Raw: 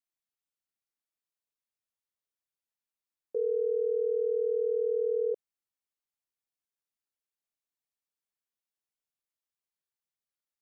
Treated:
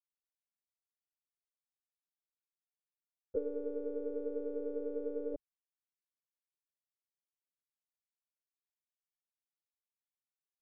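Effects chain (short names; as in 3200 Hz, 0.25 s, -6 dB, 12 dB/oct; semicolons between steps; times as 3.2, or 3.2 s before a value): expander -25 dBFS; low shelf 440 Hz +11.5 dB; limiter -28 dBFS, peak gain reduction 8.5 dB; monotone LPC vocoder at 8 kHz 290 Hz; gain +8 dB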